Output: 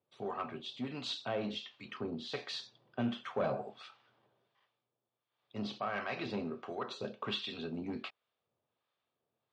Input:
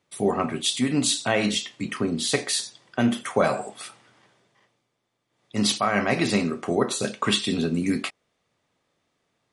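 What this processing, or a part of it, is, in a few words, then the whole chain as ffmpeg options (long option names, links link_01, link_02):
guitar amplifier with harmonic tremolo: -filter_complex "[0:a]acrossover=split=830[link_01][link_02];[link_01]aeval=exprs='val(0)*(1-0.7/2+0.7/2*cos(2*PI*1.4*n/s))':channel_layout=same[link_03];[link_02]aeval=exprs='val(0)*(1-0.7/2-0.7/2*cos(2*PI*1.4*n/s))':channel_layout=same[link_04];[link_03][link_04]amix=inputs=2:normalize=0,asoftclip=type=tanh:threshold=-18dB,highpass=100,equalizer=frequency=180:width_type=q:width=4:gain=-9,equalizer=frequency=290:width_type=q:width=4:gain=-7,equalizer=frequency=2000:width_type=q:width=4:gain=-8,lowpass=frequency=4100:width=0.5412,lowpass=frequency=4100:width=1.3066,asettb=1/sr,asplit=3[link_05][link_06][link_07];[link_05]atrim=end=2.474[link_08];[link_06]atrim=start=2.47:end=3.79,asetpts=PTS-STARTPTS,afade=type=in:duration=0.004:curve=qsin,afade=type=out:start_time=1.316:duration=0.004:curve=qsin,equalizer=frequency=150:width=0.59:gain=6[link_09];[link_07]atrim=start=3.786[link_10];[link_08][link_09]acrossfade=duration=0.004:curve1=hsin:curve2=qsin[link_11];[link_11][link_10]acrossfade=duration=0.004:curve1=qsin:curve2=hsin,volume=-7.5dB"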